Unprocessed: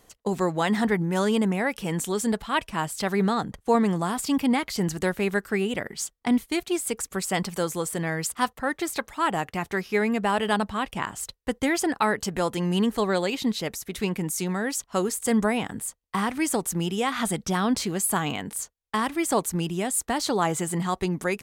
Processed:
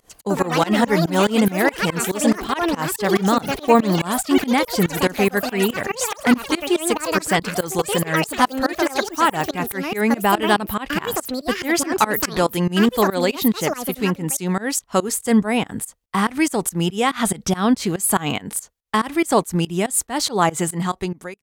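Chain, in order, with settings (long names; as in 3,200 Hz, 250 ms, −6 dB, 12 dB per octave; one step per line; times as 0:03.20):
fade-out on the ending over 0.68 s
delay with pitch and tempo change per echo 126 ms, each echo +7 semitones, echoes 3, each echo −6 dB
fake sidechain pumping 142 BPM, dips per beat 2, −24 dB, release 169 ms
level +7.5 dB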